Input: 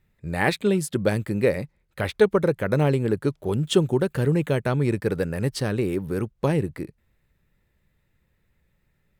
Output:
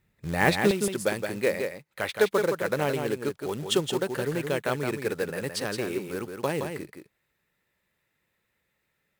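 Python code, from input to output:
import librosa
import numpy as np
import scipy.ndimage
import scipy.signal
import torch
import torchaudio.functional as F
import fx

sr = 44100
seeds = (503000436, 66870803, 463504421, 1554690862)

y = fx.highpass(x, sr, hz=fx.steps((0.0, 88.0), (0.71, 630.0)), slope=6)
y = fx.quant_float(y, sr, bits=2)
y = y + 10.0 ** (-6.0 / 20.0) * np.pad(y, (int(169 * sr / 1000.0), 0))[:len(y)]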